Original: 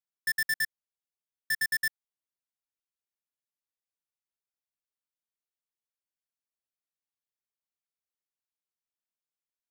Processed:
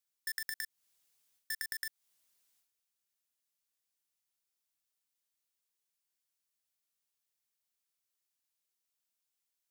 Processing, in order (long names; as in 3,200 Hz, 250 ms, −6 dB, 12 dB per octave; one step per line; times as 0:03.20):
transient designer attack −10 dB, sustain +11 dB
high-shelf EQ 2,500 Hz +10.5 dB
downward compressor 6 to 1, threshold −35 dBFS, peak gain reduction 12.5 dB
level −1 dB